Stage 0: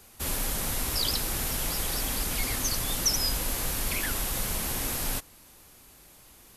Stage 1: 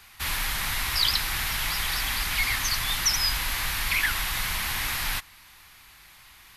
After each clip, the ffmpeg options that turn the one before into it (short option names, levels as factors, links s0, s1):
-af "equalizer=f=250:t=o:w=1:g=-7,equalizer=f=500:t=o:w=1:g=-11,equalizer=f=1000:t=o:w=1:g=6,equalizer=f=2000:t=o:w=1:g=10,equalizer=f=4000:t=o:w=1:g=6,equalizer=f=8000:t=o:w=1:g=-4"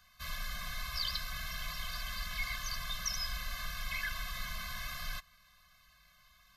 -af "equalizer=f=100:t=o:w=0.67:g=-8,equalizer=f=400:t=o:w=0.67:g=-9,equalizer=f=2500:t=o:w=0.67:g=-5,equalizer=f=10000:t=o:w=0.67:g=-12,afftfilt=real='re*eq(mod(floor(b*sr/1024/250),2),0)':imag='im*eq(mod(floor(b*sr/1024/250),2),0)':win_size=1024:overlap=0.75,volume=0.447"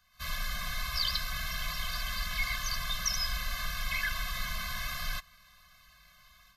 -af "dynaudnorm=f=110:g=3:m=3.35,volume=0.531"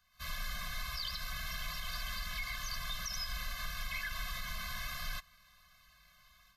-af "alimiter=level_in=1.06:limit=0.0631:level=0:latency=1:release=81,volume=0.944,volume=0.596"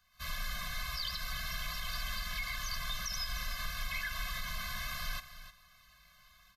-af "aecho=1:1:307:0.224,volume=1.19"